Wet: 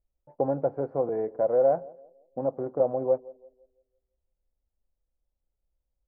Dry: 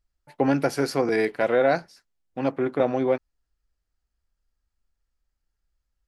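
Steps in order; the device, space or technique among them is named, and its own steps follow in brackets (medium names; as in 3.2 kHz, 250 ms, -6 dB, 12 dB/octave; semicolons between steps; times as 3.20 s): under water (low-pass 890 Hz 24 dB/octave; peaking EQ 540 Hz +8 dB 0.5 oct); dynamic bell 290 Hz, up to -8 dB, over -30 dBFS, Q 0.84; band-passed feedback delay 168 ms, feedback 40%, band-pass 400 Hz, level -20.5 dB; trim -3.5 dB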